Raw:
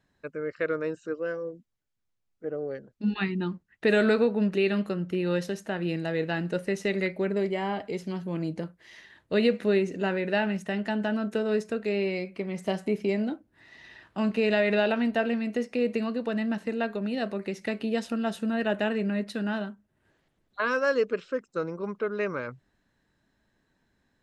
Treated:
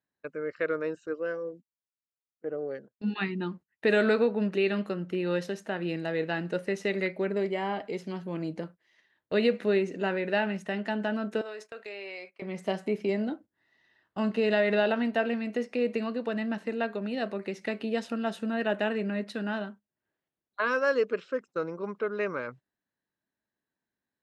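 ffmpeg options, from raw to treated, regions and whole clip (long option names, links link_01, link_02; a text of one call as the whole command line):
ffmpeg -i in.wav -filter_complex "[0:a]asettb=1/sr,asplit=3[link_01][link_02][link_03];[link_01]atrim=end=11.414[link_04];[link_02]atrim=start=11.41:end=12.42,asetpts=PTS-STARTPTS,afade=type=in:duration=0.004:curve=qsin,afade=type=out:start_time=1.006:duration=0.004:curve=qsin,highpass=670,acompressor=threshold=-35dB:ratio=5:attack=3.2:release=140:knee=1:detection=peak[link_05];[link_03]atrim=start=12.416[link_06];[link_04][link_05]acrossfade=duration=0.004:curve1=hsin:curve2=qsin[link_07];[link_07][link_06]acrossfade=duration=0.004:curve1=qsin:curve2=hsin,asettb=1/sr,asplit=3[link_08][link_09][link_10];[link_08]atrim=end=13.094[link_11];[link_09]atrim=start=13.09:end=15.03,asetpts=PTS-STARTPTS,afade=type=in:duration=0.004:curve=qsin,afade=type=out:start_time=1.936:duration=0.004:curve=qsin,lowshelf=frequency=190:gain=2.5,bandreject=frequency=2400:width=7.9[link_12];[link_10]atrim=start=15.026[link_13];[link_11][link_12]acrossfade=duration=0.004:curve1=hsin:curve2=qsin[link_14];[link_14][link_13]acrossfade=duration=0.004:curve1=qsin:curve2=hsin,highpass=frequency=230:poles=1,agate=range=-16dB:threshold=-46dB:ratio=16:detection=peak,highshelf=frequency=6400:gain=-8" out.wav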